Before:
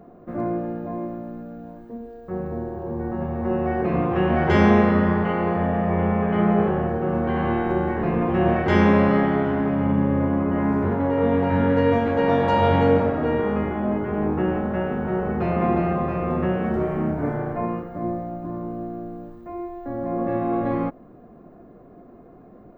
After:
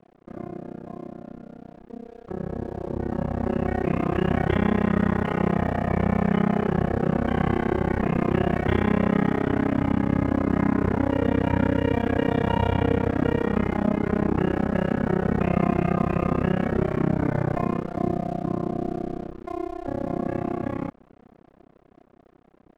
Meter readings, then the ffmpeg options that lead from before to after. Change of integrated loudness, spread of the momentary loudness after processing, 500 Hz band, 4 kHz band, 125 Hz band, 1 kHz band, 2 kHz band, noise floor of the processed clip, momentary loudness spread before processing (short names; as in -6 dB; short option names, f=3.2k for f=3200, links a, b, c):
-2.0 dB, 13 LU, -4.0 dB, -2.0 dB, 0.0 dB, -4.5 dB, -2.5 dB, -56 dBFS, 14 LU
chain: -filter_complex "[0:a]acrossover=split=280|1600[a][b][c];[a]acompressor=threshold=-27dB:ratio=4[d];[b]acompressor=threshold=-33dB:ratio=4[e];[c]acompressor=threshold=-42dB:ratio=4[f];[d][e][f]amix=inputs=3:normalize=0,tremolo=f=32:d=1,aresample=8000,aresample=44100,aeval=exprs='sgn(val(0))*max(abs(val(0))-0.00168,0)':c=same,dynaudnorm=f=270:g=21:m=11.5dB,alimiter=level_in=6dB:limit=-1dB:release=50:level=0:latency=1,volume=-8dB"